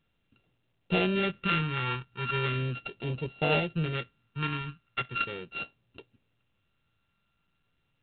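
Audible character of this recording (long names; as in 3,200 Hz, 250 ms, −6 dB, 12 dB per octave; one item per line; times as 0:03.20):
a buzz of ramps at a fixed pitch in blocks of 32 samples
phaser sweep stages 2, 0.38 Hz, lowest notch 560–1,300 Hz
mu-law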